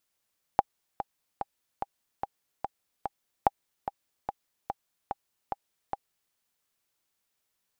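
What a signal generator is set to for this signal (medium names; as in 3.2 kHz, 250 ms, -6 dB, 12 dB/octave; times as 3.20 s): metronome 146 bpm, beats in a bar 7, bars 2, 804 Hz, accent 11 dB -6.5 dBFS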